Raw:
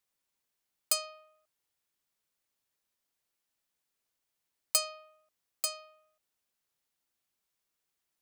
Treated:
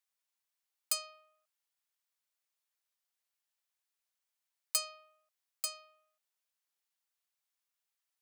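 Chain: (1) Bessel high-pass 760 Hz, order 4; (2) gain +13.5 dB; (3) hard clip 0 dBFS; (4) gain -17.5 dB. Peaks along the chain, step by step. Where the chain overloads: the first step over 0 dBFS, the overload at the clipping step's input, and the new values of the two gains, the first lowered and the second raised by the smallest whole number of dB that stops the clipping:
-9.5, +4.0, 0.0, -17.5 dBFS; step 2, 4.0 dB; step 2 +9.5 dB, step 4 -13.5 dB

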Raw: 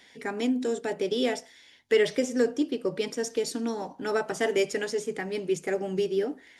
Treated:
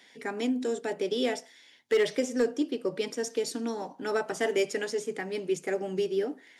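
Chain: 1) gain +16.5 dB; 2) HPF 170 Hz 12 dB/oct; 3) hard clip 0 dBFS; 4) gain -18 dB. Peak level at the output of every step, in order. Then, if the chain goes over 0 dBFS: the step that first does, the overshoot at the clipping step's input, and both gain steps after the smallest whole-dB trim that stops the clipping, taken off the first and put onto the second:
+5.0, +4.5, 0.0, -18.0 dBFS; step 1, 4.5 dB; step 1 +11.5 dB, step 4 -13 dB

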